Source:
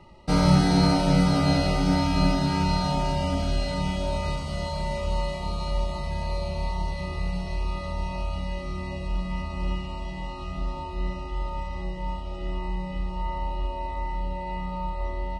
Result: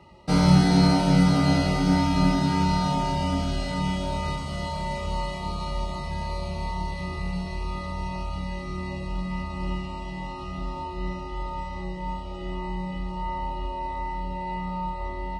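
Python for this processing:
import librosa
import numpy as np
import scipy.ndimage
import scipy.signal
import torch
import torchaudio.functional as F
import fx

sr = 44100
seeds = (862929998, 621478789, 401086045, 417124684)

y = scipy.signal.sosfilt(scipy.signal.butter(2, 59.0, 'highpass', fs=sr, output='sos'), x)
y = fx.doubler(y, sr, ms=22.0, db=-9.0)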